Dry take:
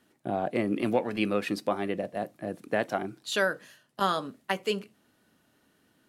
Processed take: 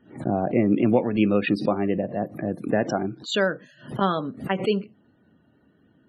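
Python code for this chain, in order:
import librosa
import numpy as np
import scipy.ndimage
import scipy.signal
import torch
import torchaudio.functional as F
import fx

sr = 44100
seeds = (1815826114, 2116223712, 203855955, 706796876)

y = fx.spec_topn(x, sr, count=64)
y = fx.low_shelf(y, sr, hz=450.0, db=11.5)
y = fx.pre_swell(y, sr, db_per_s=140.0)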